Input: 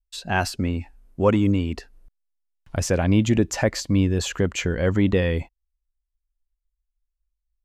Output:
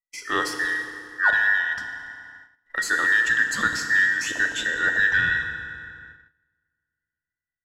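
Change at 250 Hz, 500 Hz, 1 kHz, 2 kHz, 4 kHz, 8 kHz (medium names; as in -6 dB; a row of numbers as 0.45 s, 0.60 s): -17.5 dB, -14.0 dB, +1.5 dB, +14.0 dB, +1.0 dB, -1.5 dB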